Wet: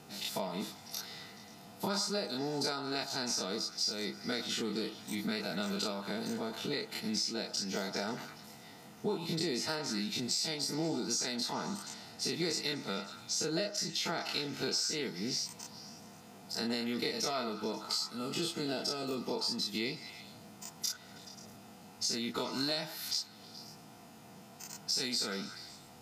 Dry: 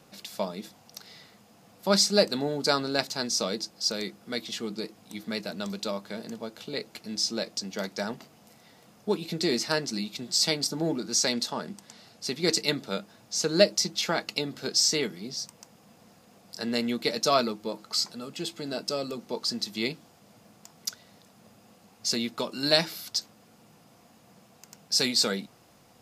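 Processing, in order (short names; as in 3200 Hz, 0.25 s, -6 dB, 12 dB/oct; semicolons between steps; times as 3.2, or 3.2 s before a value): spectral dilation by 60 ms; compressor 6:1, threshold -31 dBFS, peak gain reduction 18.5 dB; notch comb 560 Hz; delay with a stepping band-pass 0.107 s, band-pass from 950 Hz, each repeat 0.7 oct, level -6 dB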